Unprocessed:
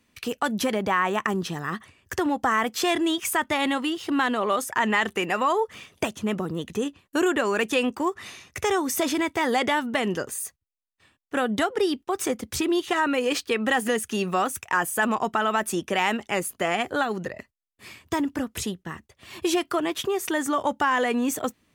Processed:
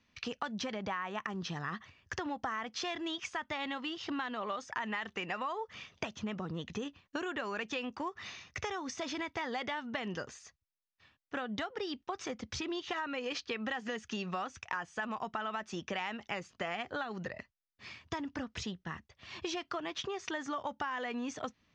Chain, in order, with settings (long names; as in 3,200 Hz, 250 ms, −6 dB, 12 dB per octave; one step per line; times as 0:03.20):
parametric band 360 Hz −6.5 dB 1.2 octaves
downward compressor, threshold −30 dBFS, peak gain reduction 11.5 dB
Butterworth low-pass 6,200 Hz 48 dB per octave
level −4 dB